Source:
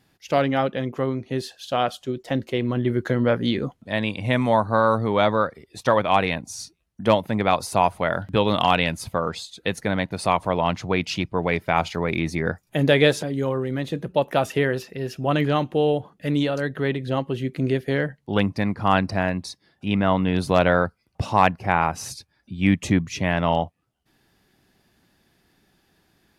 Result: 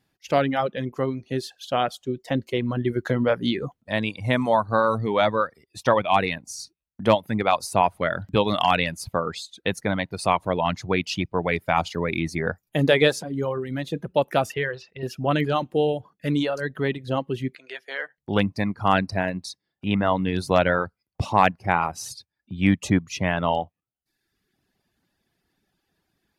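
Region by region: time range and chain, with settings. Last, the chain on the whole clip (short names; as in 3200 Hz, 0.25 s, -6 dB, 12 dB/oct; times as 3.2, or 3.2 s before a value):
14.54–15.03 LPF 4300 Hz + bell 250 Hz -13 dB 1.2 oct
17.55–18.18 HPF 950 Hz + air absorption 71 m + doubler 16 ms -11.5 dB
whole clip: reverb removal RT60 0.98 s; gate -47 dBFS, range -8 dB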